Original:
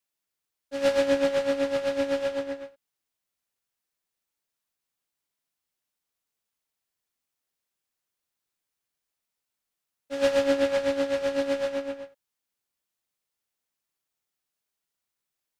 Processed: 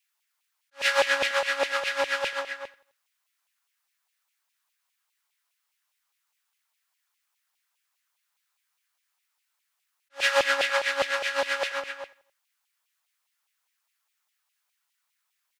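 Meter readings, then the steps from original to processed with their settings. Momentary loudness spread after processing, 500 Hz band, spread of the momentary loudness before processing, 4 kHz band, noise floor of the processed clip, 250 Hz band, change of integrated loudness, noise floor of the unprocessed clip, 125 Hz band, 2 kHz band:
15 LU, −5.5 dB, 14 LU, +8.5 dB, −79 dBFS, −18.0 dB, +0.5 dB, below −85 dBFS, below −10 dB, +11.0 dB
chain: auto-filter high-pass saw down 4.9 Hz 830–2,600 Hz
repeating echo 86 ms, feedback 49%, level −21.5 dB
level that may rise only so fast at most 380 dB per second
level +6 dB

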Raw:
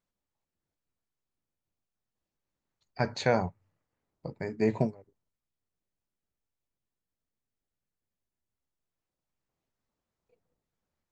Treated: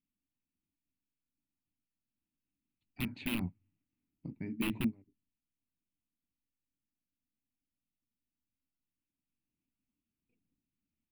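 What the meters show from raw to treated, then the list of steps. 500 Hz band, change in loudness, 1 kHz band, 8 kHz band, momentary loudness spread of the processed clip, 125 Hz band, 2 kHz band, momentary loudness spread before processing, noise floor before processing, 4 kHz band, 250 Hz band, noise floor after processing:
−20.0 dB, −7.0 dB, −17.0 dB, can't be measured, 15 LU, −8.0 dB, −6.0 dB, 13 LU, below −85 dBFS, −2.5 dB, −2.5 dB, below −85 dBFS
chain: wrap-around overflow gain 20 dB
drawn EQ curve 150 Hz 0 dB, 280 Hz +10 dB, 480 Hz −18 dB, 920 Hz −14 dB, 1,700 Hz −12 dB, 2,600 Hz +3 dB, 6,600 Hz −29 dB, 10,000 Hz −4 dB
level −4.5 dB

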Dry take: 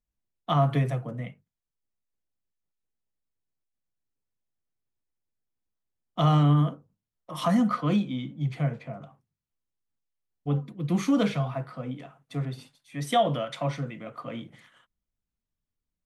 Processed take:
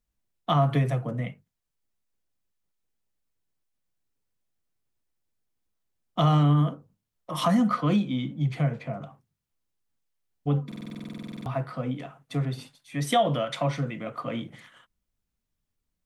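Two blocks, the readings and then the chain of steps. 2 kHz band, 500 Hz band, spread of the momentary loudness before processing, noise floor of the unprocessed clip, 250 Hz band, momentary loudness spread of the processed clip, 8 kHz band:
+1.5 dB, +0.5 dB, 17 LU, below −85 dBFS, 0.0 dB, 16 LU, +2.0 dB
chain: downward compressor 1.5 to 1, threshold −31 dBFS, peak gain reduction 5.5 dB
buffer that repeats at 0:10.67, samples 2,048, times 16
level +5 dB

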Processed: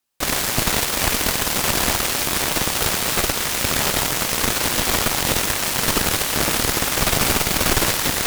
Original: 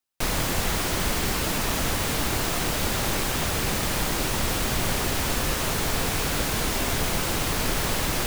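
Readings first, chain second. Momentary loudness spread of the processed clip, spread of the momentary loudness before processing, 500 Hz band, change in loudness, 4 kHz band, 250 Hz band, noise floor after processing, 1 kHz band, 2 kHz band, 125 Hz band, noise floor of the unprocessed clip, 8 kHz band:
2 LU, 0 LU, +4.0 dB, +6.5 dB, +7.0 dB, +3.0 dB, −24 dBFS, +5.0 dB, +6.0 dB, +1.0 dB, −27 dBFS, +8.0 dB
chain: four-comb reverb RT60 0.99 s, combs from 27 ms, DRR 1.5 dB
harmonic generator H 3 −14 dB, 7 −13 dB, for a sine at −10.5 dBFS
level +5.5 dB

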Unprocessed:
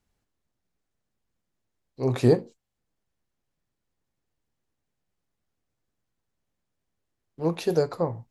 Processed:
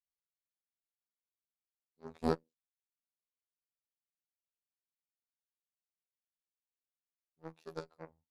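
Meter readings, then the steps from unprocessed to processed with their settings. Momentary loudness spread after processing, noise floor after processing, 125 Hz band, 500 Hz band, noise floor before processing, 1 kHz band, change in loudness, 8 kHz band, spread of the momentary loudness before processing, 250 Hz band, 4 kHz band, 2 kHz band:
18 LU, below −85 dBFS, −20.5 dB, −17.0 dB, −82 dBFS, −9.0 dB, −14.0 dB, −18.5 dB, 8 LU, −14.5 dB, −15.0 dB, −12.0 dB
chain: harmonic generator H 3 −10 dB, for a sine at −7.5 dBFS
phases set to zero 80.8 Hz
level −6.5 dB

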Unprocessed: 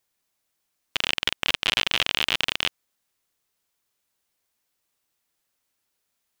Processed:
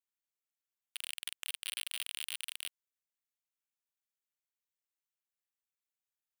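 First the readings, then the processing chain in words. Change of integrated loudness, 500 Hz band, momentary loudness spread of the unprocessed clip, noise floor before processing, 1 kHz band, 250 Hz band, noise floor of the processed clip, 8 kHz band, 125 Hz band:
−16.0 dB, below −30 dB, 6 LU, −78 dBFS, −27.0 dB, below −35 dB, below −85 dBFS, −4.5 dB, below −40 dB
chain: running median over 9 samples
first difference
level −7 dB

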